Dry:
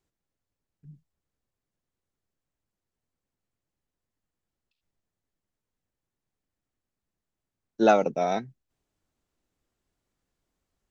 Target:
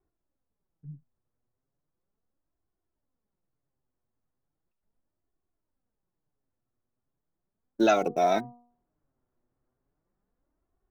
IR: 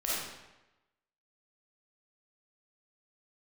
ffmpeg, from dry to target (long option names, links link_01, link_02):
-filter_complex "[0:a]acrossover=split=1600[link_01][link_02];[link_01]alimiter=limit=-17dB:level=0:latency=1:release=19[link_03];[link_02]aeval=exprs='val(0)*gte(abs(val(0)),0.00251)':channel_layout=same[link_04];[link_03][link_04]amix=inputs=2:normalize=0,flanger=delay=2.7:depth=5.6:regen=32:speed=0.37:shape=sinusoidal,bandreject=frequency=240.8:width_type=h:width=4,bandreject=frequency=481.6:width_type=h:width=4,bandreject=frequency=722.4:width_type=h:width=4,bandreject=frequency=963.2:width_type=h:width=4,bandreject=frequency=1204:width_type=h:width=4,volume=6dB"